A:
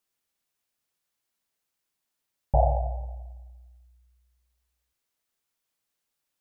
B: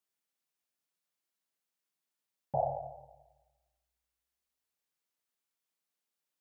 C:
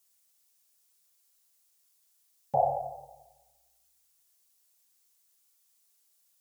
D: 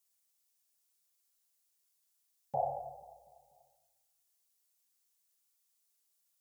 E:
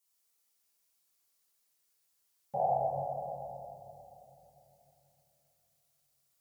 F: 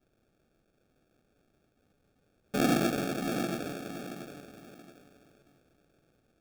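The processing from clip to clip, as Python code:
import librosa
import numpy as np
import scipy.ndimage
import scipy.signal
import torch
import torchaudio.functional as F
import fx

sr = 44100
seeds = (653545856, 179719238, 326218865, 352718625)

y1 = scipy.signal.sosfilt(scipy.signal.butter(4, 130.0, 'highpass', fs=sr, output='sos'), x)
y1 = F.gain(torch.from_numpy(y1), -7.0).numpy()
y2 = fx.bass_treble(y1, sr, bass_db=-8, treble_db=14)
y2 = fx.notch_comb(y2, sr, f0_hz=310.0)
y2 = F.gain(torch.from_numpy(y2), 7.5).numpy()
y3 = fx.echo_feedback(y2, sr, ms=244, feedback_pct=54, wet_db=-19.5)
y3 = F.gain(torch.from_numpy(y3), -8.0).numpy()
y4 = fx.room_shoebox(y3, sr, seeds[0], volume_m3=150.0, walls='hard', distance_m=1.1)
y4 = F.gain(torch.from_numpy(y4), -3.0).numpy()
y5 = fx.sample_hold(y4, sr, seeds[1], rate_hz=1000.0, jitter_pct=0)
y5 = fx.echo_feedback(y5, sr, ms=677, feedback_pct=26, wet_db=-7.5)
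y5 = F.gain(torch.from_numpy(y5), 4.0).numpy()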